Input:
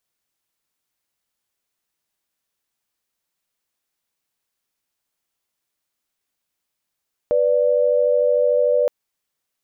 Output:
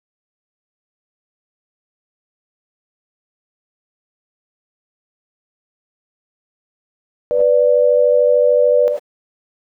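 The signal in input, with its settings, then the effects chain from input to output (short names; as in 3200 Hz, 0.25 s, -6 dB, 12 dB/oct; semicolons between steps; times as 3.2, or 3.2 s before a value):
chord B4/D5 sine, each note -17 dBFS 1.57 s
non-linear reverb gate 0.12 s rising, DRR 2 dB; requantised 10-bit, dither none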